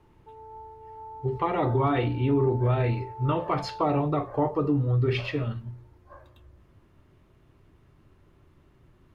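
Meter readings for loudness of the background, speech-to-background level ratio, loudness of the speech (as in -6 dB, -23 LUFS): -42.5 LUFS, 16.0 dB, -26.5 LUFS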